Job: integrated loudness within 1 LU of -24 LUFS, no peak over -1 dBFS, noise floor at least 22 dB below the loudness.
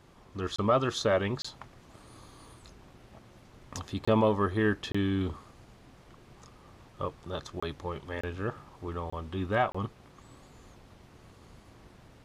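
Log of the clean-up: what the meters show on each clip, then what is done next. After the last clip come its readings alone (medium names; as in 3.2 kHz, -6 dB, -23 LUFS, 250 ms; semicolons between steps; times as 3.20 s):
dropouts 8; longest dropout 25 ms; loudness -31.0 LUFS; peak level -14.0 dBFS; loudness target -24.0 LUFS
-> interpolate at 0.56/1.42/4.05/4.92/7.60/8.21/9.10/9.72 s, 25 ms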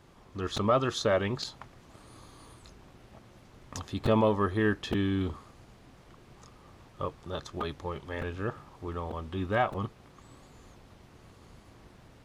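dropouts 0; loudness -31.0 LUFS; peak level -14.0 dBFS; loudness target -24.0 LUFS
-> trim +7 dB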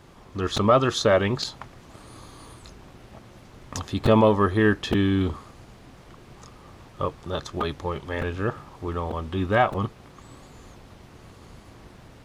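loudness -24.0 LUFS; peak level -7.0 dBFS; noise floor -49 dBFS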